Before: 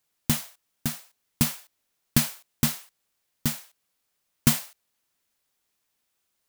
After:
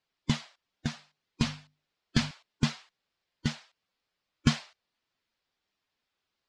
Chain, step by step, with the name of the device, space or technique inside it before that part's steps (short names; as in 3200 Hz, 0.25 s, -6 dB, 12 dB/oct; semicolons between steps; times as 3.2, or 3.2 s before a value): clip after many re-uploads (LPF 5300 Hz 24 dB/oct; bin magnitudes rounded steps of 15 dB); 0.91–2.31 notches 50/100/150/200/250 Hz; gain -1.5 dB